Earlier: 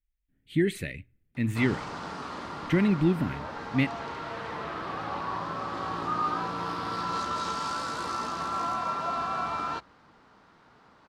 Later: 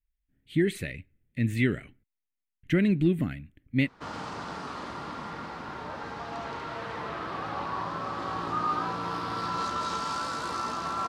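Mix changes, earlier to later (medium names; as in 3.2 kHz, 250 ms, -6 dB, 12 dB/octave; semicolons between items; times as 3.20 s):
background: entry +2.45 s; master: remove hum notches 60/120 Hz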